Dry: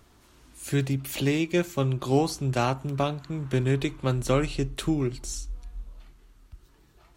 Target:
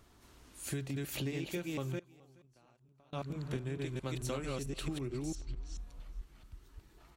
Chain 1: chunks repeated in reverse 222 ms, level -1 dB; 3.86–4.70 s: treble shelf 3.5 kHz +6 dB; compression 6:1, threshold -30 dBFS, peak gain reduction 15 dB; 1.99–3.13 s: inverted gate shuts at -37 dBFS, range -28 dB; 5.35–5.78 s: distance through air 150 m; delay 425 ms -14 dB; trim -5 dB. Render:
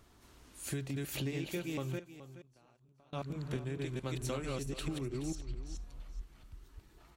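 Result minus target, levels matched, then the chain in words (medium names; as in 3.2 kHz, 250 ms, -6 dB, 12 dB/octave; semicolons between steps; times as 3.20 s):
echo-to-direct +10 dB
chunks repeated in reverse 222 ms, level -1 dB; 3.86–4.70 s: treble shelf 3.5 kHz +6 dB; compression 6:1, threshold -30 dBFS, peak gain reduction 15 dB; 1.99–3.13 s: inverted gate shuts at -37 dBFS, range -28 dB; 5.35–5.78 s: distance through air 150 m; delay 425 ms -24 dB; trim -5 dB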